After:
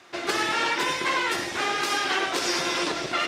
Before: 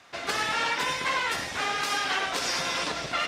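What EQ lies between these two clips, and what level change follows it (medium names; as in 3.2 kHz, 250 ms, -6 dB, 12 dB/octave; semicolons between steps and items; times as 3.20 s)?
high-pass 110 Hz 6 dB/octave; peaking EQ 350 Hz +14.5 dB 0.27 oct; +2.0 dB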